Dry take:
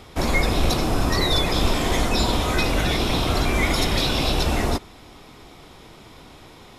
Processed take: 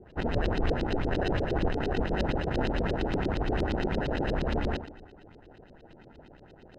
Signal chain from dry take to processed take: Schroeder reverb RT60 0.85 s, combs from 31 ms, DRR 8.5 dB; sample-and-hold 39×; LFO low-pass saw up 8.6 Hz 320–4600 Hz; trim -9 dB

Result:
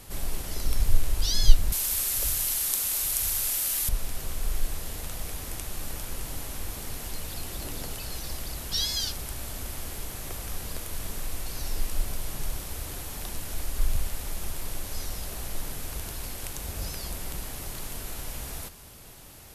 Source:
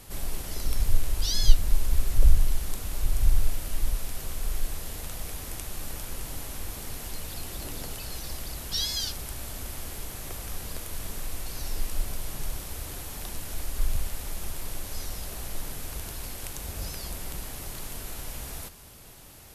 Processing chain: 1.72–3.89 s: tilt EQ +4 dB/octave; trim +1 dB

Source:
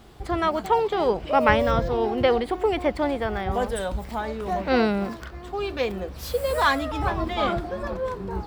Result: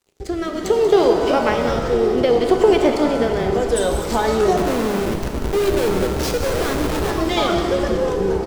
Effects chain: compression 6:1, threshold -27 dBFS, peak gain reduction 13.5 dB; peaking EQ 6.2 kHz +13.5 dB 1.1 oct; level rider gain up to 5 dB; crossover distortion -41.5 dBFS; rotary cabinet horn 0.65 Hz; 4.57–7.11 s: Schmitt trigger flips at -31.5 dBFS; peaking EQ 400 Hz +9.5 dB 0.66 oct; frequency-shifting echo 186 ms, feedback 61%, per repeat -66 Hz, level -11.5 dB; pitch-shifted reverb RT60 1.6 s, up +7 st, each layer -8 dB, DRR 5.5 dB; trim +5.5 dB

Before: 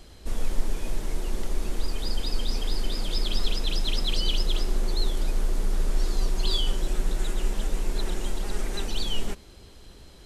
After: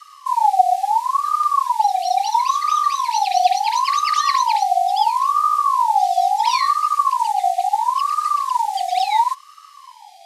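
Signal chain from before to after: Chebyshev band-stop 110–2700 Hz, order 5; ring modulator with a swept carrier 970 Hz, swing 25%, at 0.73 Hz; trim +8 dB

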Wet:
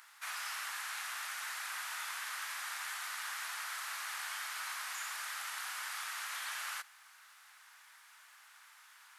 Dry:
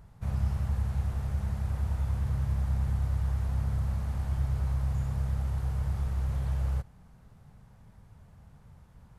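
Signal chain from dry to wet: inverse Chebyshev high-pass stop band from 230 Hz, stop band 80 dB; trim +14.5 dB

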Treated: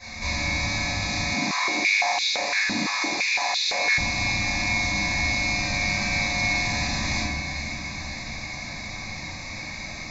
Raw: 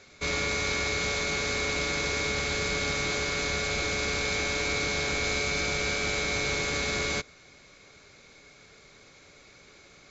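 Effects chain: peak limiter -25 dBFS, peak gain reduction 9 dB; compression 3:1, threshold -44 dBFS, peak gain reduction 10 dB; static phaser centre 2.1 kHz, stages 8; echo that smears into a reverb 521 ms, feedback 65%, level -10.5 dB; reverberation RT60 1.2 s, pre-delay 4 ms, DRR -16 dB; 1.34–3.98 s: step-sequenced high-pass 5.9 Hz 240–3500 Hz; trim +2.5 dB

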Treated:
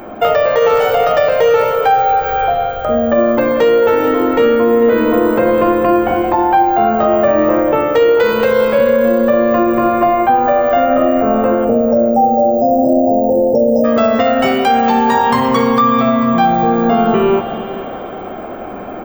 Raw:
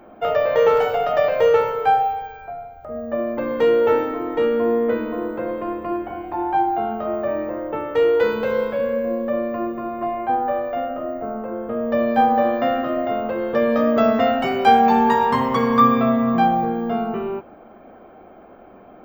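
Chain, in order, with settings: spectral selection erased 11.65–13.84 s, 910–5000 Hz; spring tank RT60 3.6 s, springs 42 ms, chirp 30 ms, DRR 9.5 dB; in parallel at +3 dB: compression, threshold -29 dBFS, peak gain reduction 18.5 dB; on the sum: treble shelf 5.4 kHz +11.5 dB; gain riding within 4 dB 0.5 s; on a send: feedback delay 442 ms, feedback 28%, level -15 dB; on the sum: loudness maximiser +8 dB; trim -2 dB

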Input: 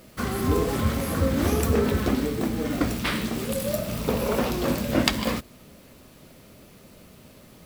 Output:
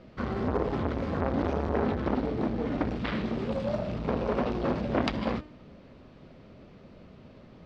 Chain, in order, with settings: low-pass 4.9 kHz 24 dB/octave; treble shelf 2.3 kHz -11.5 dB; de-hum 303.5 Hz, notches 32; transformer saturation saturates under 1.2 kHz

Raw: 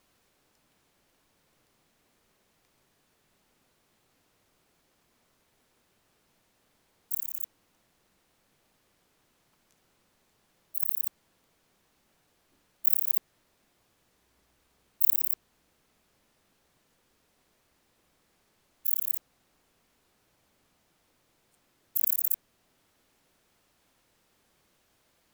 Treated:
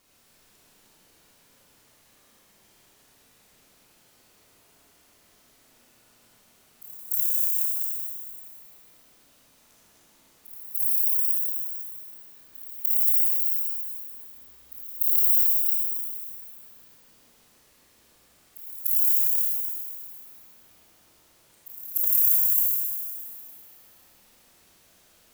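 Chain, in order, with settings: chunks repeated in reverse 246 ms, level -4.5 dB; treble shelf 3.9 kHz +6.5 dB; peak limiter -9 dBFS, peak gain reduction 13.5 dB; reverse echo 295 ms -18.5 dB; Schroeder reverb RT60 2.2 s, combs from 26 ms, DRR -5 dB

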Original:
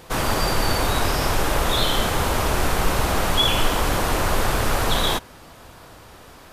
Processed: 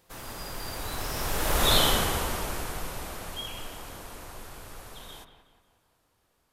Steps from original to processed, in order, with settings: Doppler pass-by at 1.76 s, 13 m/s, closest 2.7 m; treble shelf 6.7 kHz +8 dB; de-hum 50.61 Hz, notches 30; on a send: bucket-brigade echo 181 ms, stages 4096, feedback 45%, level -11 dB; on the sum: trim -1.5 dB

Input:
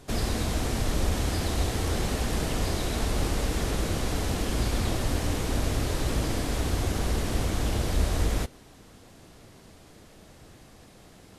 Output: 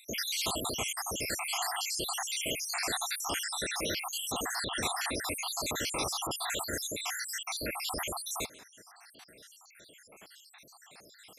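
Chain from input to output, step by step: random holes in the spectrogram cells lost 75%; high-pass 1.4 kHz 6 dB/octave; trim +9 dB

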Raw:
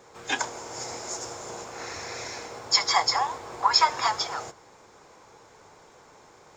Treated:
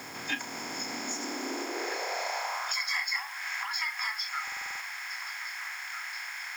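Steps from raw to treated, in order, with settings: spectral levelling over time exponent 0.4; spectral noise reduction 14 dB; in parallel at -8.5 dB: wavefolder -15.5 dBFS; on the sum: compression 10:1, threshold -28 dBFS, peak gain reduction 15.5 dB; bit crusher 8-bit; repeats whose band climbs or falls 797 ms, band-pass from 570 Hz, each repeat 1.4 oct, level -5.5 dB; high-pass sweep 63 Hz -> 1.8 kHz, 0.42–3.01 s; ten-band graphic EQ 250 Hz +6 dB, 1 kHz -10 dB, 2 kHz +8 dB, 4 kHz -5 dB; high-pass sweep 140 Hz -> 770 Hz, 0.13–3.16 s; buffer glitch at 4.43 s, samples 2048, times 7; trim -1 dB

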